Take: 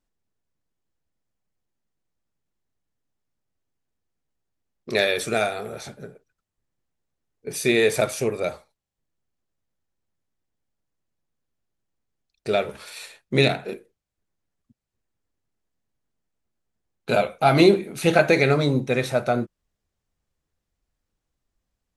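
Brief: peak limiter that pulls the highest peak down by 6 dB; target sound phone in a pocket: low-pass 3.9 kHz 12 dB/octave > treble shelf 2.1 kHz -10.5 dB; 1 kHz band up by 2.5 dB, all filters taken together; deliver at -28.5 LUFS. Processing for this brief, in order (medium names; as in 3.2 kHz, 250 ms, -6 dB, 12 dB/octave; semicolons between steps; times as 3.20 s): peaking EQ 1 kHz +6.5 dB; peak limiter -7 dBFS; low-pass 3.9 kHz 12 dB/octave; treble shelf 2.1 kHz -10.5 dB; trim -5.5 dB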